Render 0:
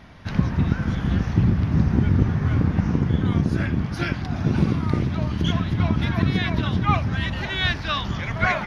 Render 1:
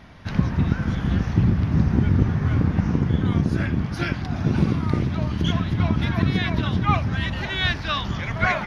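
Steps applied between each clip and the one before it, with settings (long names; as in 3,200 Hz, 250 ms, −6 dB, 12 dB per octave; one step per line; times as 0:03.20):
no processing that can be heard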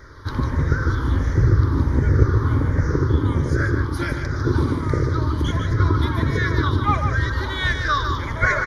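rippled gain that drifts along the octave scale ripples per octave 0.55, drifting −1.4 Hz, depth 8 dB
phaser with its sweep stopped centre 720 Hz, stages 6
on a send: single-tap delay 149 ms −7 dB
on the sum: level +5.5 dB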